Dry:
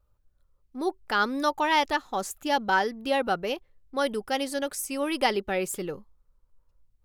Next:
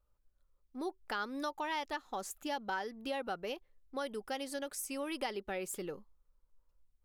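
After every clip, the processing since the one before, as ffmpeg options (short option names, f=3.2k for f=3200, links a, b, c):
-af "acompressor=threshold=-30dB:ratio=3,equalizer=f=97:t=o:w=1.1:g=-8.5,volume=-6dB"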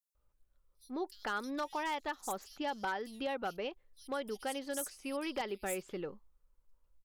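-filter_complex "[0:a]acrossover=split=4800[a][b];[a]adelay=150[c];[c][b]amix=inputs=2:normalize=0,aeval=exprs='0.0355*(abs(mod(val(0)/0.0355+3,4)-2)-1)':c=same,volume=1dB"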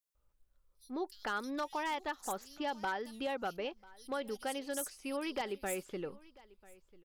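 -af "aecho=1:1:993:0.075"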